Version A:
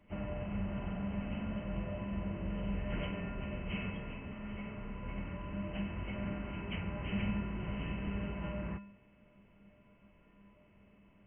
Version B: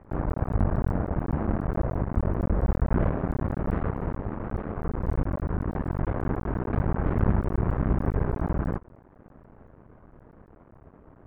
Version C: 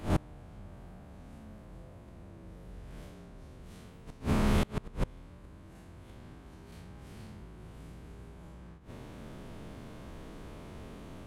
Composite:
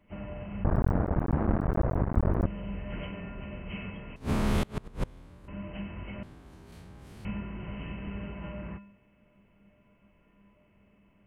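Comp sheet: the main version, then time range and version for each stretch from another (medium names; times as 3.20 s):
A
0.64–2.46 s: from B
4.16–5.48 s: from C
6.23–7.25 s: from C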